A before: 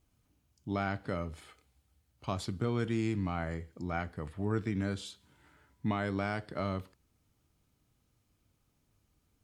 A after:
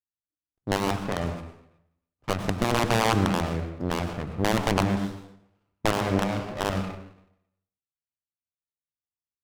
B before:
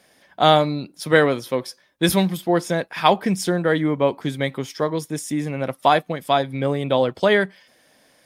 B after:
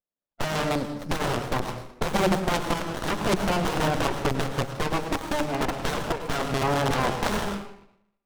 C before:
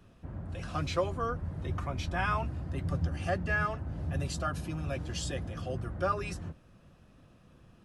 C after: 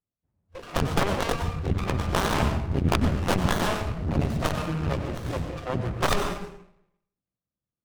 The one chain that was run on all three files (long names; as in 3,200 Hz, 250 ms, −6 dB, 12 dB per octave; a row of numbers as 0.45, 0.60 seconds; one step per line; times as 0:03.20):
high-pass filter 40 Hz 6 dB per octave
noise reduction from a noise print of the clip's start 27 dB
noise gate −48 dBFS, range −17 dB
dynamic equaliser 2,000 Hz, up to +5 dB, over −38 dBFS, Q 2.4
downward compressor 6 to 1, threshold −19 dBFS
hollow resonant body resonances 1,200/2,800 Hz, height 10 dB, ringing for 100 ms
harmonic generator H 3 −18 dB, 6 −45 dB, 8 −12 dB, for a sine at −6 dBFS
wrap-around overflow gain 21.5 dB
high-frequency loss of the air 53 metres
dense smooth reverb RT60 0.78 s, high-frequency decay 0.55×, pre-delay 85 ms, DRR 7.5 dB
windowed peak hold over 17 samples
loudness normalisation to −27 LKFS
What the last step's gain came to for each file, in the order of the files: +11.0, +8.0, +13.0 decibels